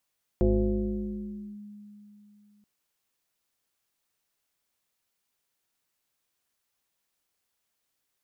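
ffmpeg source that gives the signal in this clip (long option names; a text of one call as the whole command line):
ffmpeg -f lavfi -i "aevalsrc='0.126*pow(10,-3*t/3.2)*sin(2*PI*207*t+1.8*clip(1-t/1.18,0,1)*sin(2*PI*0.75*207*t))':duration=2.23:sample_rate=44100" out.wav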